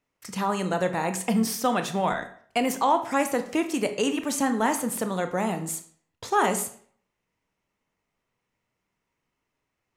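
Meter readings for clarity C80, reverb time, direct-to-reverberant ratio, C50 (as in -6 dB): 15.0 dB, 0.55 s, 7.5 dB, 11.5 dB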